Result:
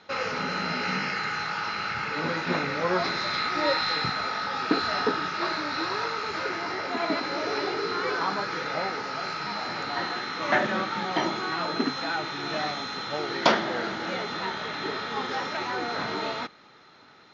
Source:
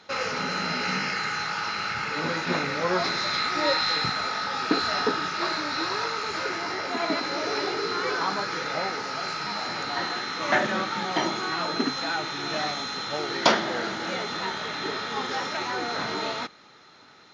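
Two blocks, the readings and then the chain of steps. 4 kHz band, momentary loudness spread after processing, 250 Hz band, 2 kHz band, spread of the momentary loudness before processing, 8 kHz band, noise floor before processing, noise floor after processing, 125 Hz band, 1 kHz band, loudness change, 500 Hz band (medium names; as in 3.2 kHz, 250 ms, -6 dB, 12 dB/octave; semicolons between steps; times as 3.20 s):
-3.0 dB, 6 LU, 0.0 dB, -1.0 dB, 6 LU, -6.5 dB, -52 dBFS, -53 dBFS, 0.0 dB, -0.5 dB, -1.0 dB, -0.5 dB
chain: distance through air 100 m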